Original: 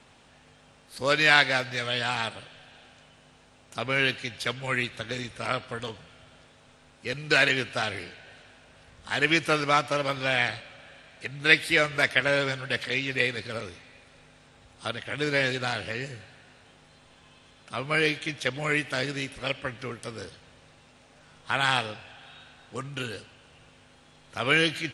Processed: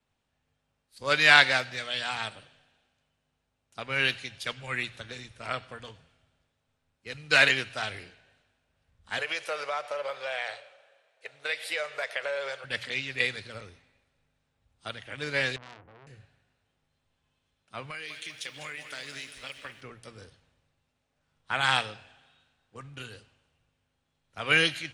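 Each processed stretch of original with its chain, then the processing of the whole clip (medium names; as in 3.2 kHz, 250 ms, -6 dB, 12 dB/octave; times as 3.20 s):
9.18–12.64 s: resonant low shelf 350 Hz -13.5 dB, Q 3 + compression 5:1, threshold -23 dBFS
15.56–16.07 s: low-pass 1.2 kHz 24 dB/octave + transformer saturation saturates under 2.8 kHz
17.90–19.81 s: tilt shelf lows -6 dB, about 820 Hz + compression, threshold -29 dBFS + bit-crushed delay 199 ms, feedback 55%, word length 9-bit, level -9 dB
whole clip: hum notches 60/120 Hz; dynamic bell 300 Hz, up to -6 dB, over -39 dBFS, Q 0.73; three bands expanded up and down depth 70%; trim -4 dB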